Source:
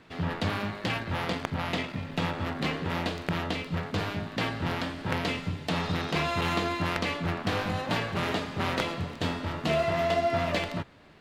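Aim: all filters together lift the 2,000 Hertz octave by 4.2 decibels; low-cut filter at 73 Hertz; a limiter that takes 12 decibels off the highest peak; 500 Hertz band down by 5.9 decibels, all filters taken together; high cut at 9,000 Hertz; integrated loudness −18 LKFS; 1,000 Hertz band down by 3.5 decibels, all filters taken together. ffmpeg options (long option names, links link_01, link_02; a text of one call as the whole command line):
ffmpeg -i in.wav -af "highpass=73,lowpass=9000,equalizer=frequency=500:width_type=o:gain=-7.5,equalizer=frequency=1000:width_type=o:gain=-4,equalizer=frequency=2000:width_type=o:gain=6.5,volume=14dB,alimiter=limit=-7dB:level=0:latency=1" out.wav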